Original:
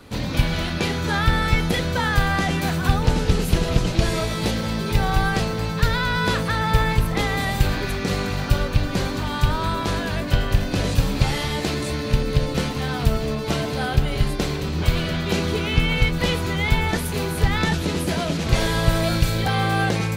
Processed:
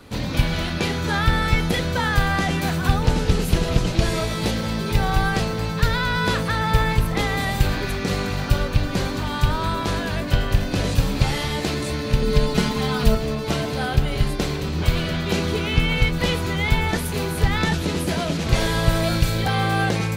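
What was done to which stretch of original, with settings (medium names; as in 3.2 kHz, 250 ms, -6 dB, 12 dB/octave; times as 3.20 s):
12.22–13.15 s: comb 4.8 ms, depth 98%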